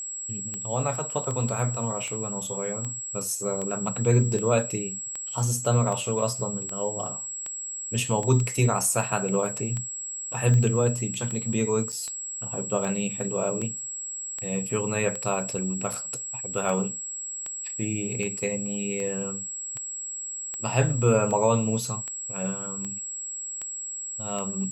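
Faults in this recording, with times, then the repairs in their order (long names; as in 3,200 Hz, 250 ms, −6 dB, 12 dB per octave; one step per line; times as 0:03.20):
scratch tick 78 rpm −20 dBFS
whistle 7,700 Hz −32 dBFS
0:11.92–0:11.93: drop-out 6.5 ms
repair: click removal
notch filter 7,700 Hz, Q 30
repair the gap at 0:11.92, 6.5 ms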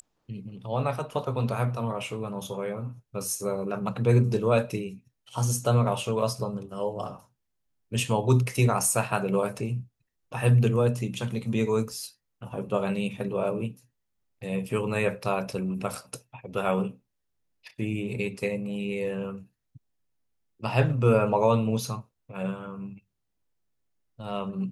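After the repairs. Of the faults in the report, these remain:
none of them is left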